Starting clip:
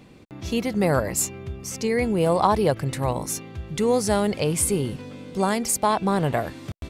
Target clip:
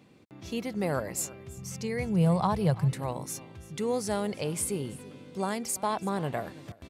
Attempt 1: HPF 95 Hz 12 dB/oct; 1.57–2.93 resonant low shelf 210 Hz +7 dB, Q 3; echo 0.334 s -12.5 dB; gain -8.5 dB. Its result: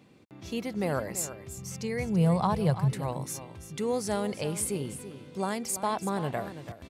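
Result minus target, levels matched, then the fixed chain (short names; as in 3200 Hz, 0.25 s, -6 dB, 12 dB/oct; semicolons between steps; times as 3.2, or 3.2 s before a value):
echo-to-direct +7.5 dB
HPF 95 Hz 12 dB/oct; 1.57–2.93 resonant low shelf 210 Hz +7 dB, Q 3; echo 0.334 s -20 dB; gain -8.5 dB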